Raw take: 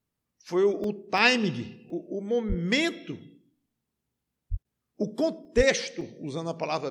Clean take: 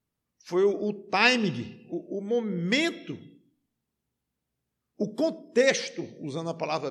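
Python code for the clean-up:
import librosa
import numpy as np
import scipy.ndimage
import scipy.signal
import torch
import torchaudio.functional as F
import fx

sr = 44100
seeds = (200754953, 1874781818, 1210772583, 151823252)

y = fx.highpass(x, sr, hz=140.0, slope=24, at=(2.48, 2.6), fade=0.02)
y = fx.highpass(y, sr, hz=140.0, slope=24, at=(4.5, 4.62), fade=0.02)
y = fx.highpass(y, sr, hz=140.0, slope=24, at=(5.56, 5.68), fade=0.02)
y = fx.fix_interpolate(y, sr, at_s=(0.84, 1.18, 1.9, 4.25, 5.45, 6.01), length_ms=2.4)
y = fx.fix_interpolate(y, sr, at_s=(4.63,), length_ms=17.0)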